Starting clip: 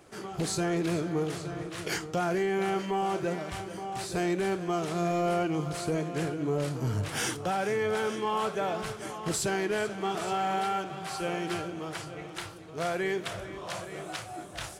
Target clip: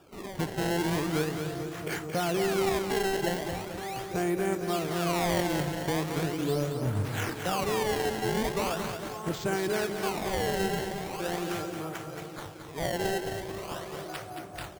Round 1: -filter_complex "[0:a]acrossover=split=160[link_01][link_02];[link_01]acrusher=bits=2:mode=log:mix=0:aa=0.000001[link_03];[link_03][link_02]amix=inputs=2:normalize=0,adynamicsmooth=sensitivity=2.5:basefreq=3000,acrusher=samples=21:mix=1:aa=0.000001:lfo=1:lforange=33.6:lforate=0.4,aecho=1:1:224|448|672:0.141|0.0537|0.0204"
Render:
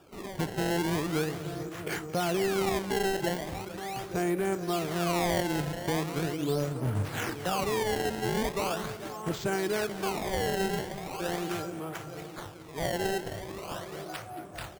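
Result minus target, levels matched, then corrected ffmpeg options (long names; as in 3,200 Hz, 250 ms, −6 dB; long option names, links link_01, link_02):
echo-to-direct −9 dB
-filter_complex "[0:a]acrossover=split=160[link_01][link_02];[link_01]acrusher=bits=2:mode=log:mix=0:aa=0.000001[link_03];[link_03][link_02]amix=inputs=2:normalize=0,adynamicsmooth=sensitivity=2.5:basefreq=3000,acrusher=samples=21:mix=1:aa=0.000001:lfo=1:lforange=33.6:lforate=0.4,aecho=1:1:224|448|672|896:0.447|0.17|0.0645|0.0245"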